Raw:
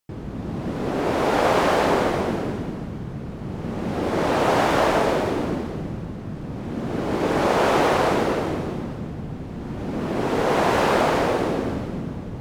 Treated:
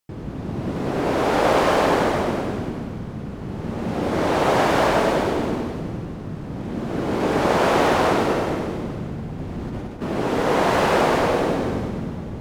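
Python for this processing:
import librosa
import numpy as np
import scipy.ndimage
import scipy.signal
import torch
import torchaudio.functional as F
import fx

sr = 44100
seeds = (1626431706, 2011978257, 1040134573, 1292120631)

y = fx.over_compress(x, sr, threshold_db=-31.0, ratio=-0.5, at=(9.38, 10.02))
y = fx.echo_feedback(y, sr, ms=98, feedback_pct=57, wet_db=-7)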